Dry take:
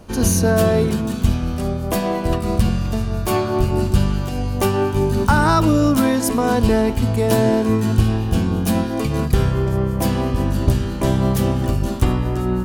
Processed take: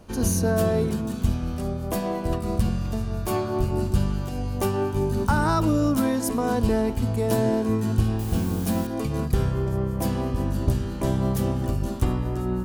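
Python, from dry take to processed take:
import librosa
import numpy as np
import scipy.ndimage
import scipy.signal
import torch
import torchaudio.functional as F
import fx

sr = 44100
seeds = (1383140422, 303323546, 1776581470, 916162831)

y = fx.quant_dither(x, sr, seeds[0], bits=6, dither='triangular', at=(8.19, 8.87))
y = fx.dynamic_eq(y, sr, hz=2700.0, q=0.7, threshold_db=-38.0, ratio=4.0, max_db=-4)
y = F.gain(torch.from_numpy(y), -6.0).numpy()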